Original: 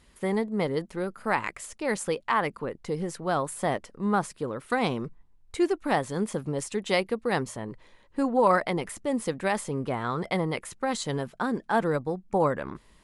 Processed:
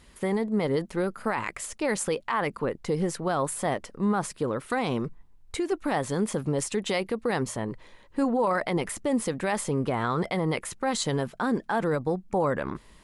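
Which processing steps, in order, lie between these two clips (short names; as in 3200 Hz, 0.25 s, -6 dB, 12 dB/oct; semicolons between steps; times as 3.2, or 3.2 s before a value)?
limiter -21.5 dBFS, peak gain reduction 11.5 dB; 4.97–5.72 compressor, threshold -29 dBFS, peak gain reduction 4.5 dB; gain +4.5 dB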